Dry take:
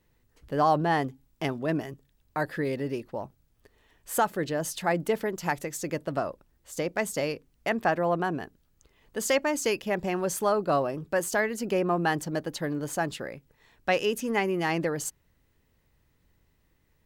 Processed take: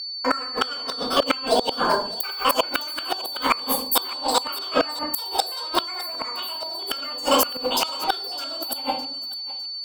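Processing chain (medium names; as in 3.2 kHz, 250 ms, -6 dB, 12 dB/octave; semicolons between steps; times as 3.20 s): slices played last to first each 106 ms, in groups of 4; band-stop 1.1 kHz, Q 14; gate -53 dBFS, range -41 dB; tilt EQ +2 dB/octave; hum notches 60/120/180/240/300/360/420 Hz; level rider gain up to 10 dB; wow and flutter 19 cents; simulated room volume 190 m³, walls mixed, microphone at 4.1 m; inverted gate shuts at -1 dBFS, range -26 dB; on a send: thinning echo 1054 ms, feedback 41%, high-pass 510 Hz, level -16.5 dB; on the sum: whistle 2.6 kHz -25 dBFS; speed mistake 45 rpm record played at 78 rpm; trim -4.5 dB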